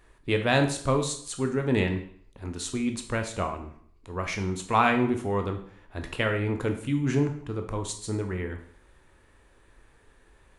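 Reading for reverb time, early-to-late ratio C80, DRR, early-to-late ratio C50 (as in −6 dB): 0.60 s, 13.5 dB, 5.0 dB, 9.5 dB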